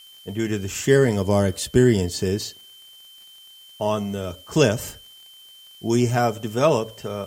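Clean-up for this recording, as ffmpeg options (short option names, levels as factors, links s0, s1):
-af "adeclick=t=4,bandreject=f=3100:w=30,agate=range=0.0891:threshold=0.0112"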